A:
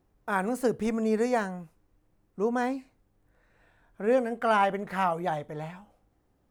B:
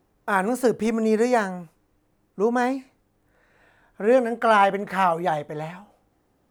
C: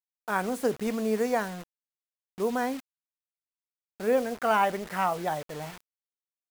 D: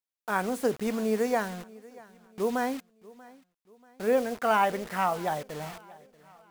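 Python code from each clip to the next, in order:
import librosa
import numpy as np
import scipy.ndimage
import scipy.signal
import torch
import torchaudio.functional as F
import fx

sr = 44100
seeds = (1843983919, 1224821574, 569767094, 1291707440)

y1 = fx.low_shelf(x, sr, hz=100.0, db=-10.0)
y1 = y1 * 10.0 ** (6.5 / 20.0)
y2 = fx.quant_dither(y1, sr, seeds[0], bits=6, dither='none')
y2 = y2 * 10.0 ** (-6.5 / 20.0)
y3 = fx.echo_feedback(y2, sr, ms=636, feedback_pct=43, wet_db=-22)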